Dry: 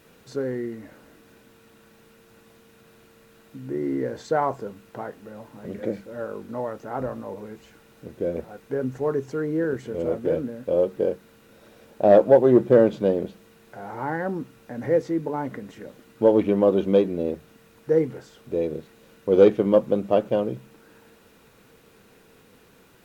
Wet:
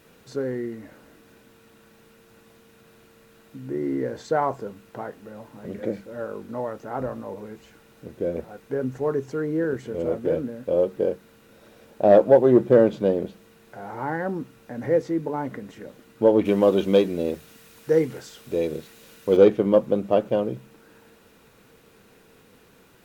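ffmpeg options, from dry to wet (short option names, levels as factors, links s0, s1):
-filter_complex "[0:a]asettb=1/sr,asplit=3[s0][s1][s2];[s0]atrim=end=16.454[s3];[s1]atrim=start=16.45:end=19.37,asetpts=PTS-STARTPTS,afade=t=in:d=0.004:c=qsin,afade=t=out:st=2.916:d=0.004:c=qsin,highshelf=f=2100:g=11[s4];[s2]atrim=start=19.366[s5];[s3][s4]acrossfade=d=0.004:c1=hsin:c2=qsin[s6];[s6][s5]acrossfade=d=0.004:c1=qsin:c2=hsin"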